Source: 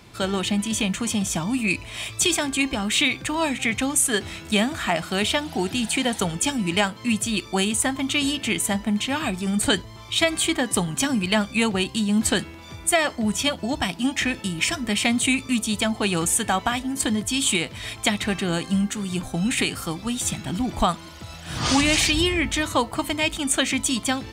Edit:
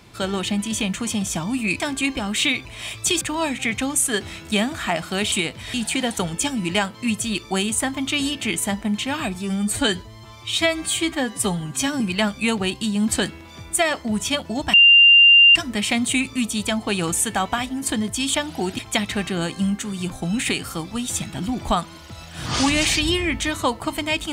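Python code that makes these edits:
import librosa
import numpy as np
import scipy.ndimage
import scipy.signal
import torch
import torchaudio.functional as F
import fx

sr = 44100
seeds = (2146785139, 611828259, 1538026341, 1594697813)

y = fx.edit(x, sr, fx.move(start_s=1.8, length_s=0.56, to_s=3.21),
    fx.swap(start_s=5.32, length_s=0.44, other_s=17.48, other_length_s=0.42),
    fx.stretch_span(start_s=9.37, length_s=1.77, factor=1.5),
    fx.bleep(start_s=13.87, length_s=0.82, hz=2790.0, db=-7.5), tone=tone)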